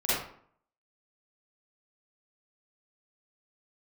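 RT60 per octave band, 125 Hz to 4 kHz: 0.60, 0.65, 0.55, 0.60, 0.50, 0.35 s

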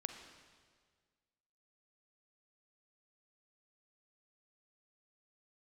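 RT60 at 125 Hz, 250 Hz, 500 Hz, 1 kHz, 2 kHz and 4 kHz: 1.9, 1.8, 1.8, 1.6, 1.6, 1.5 s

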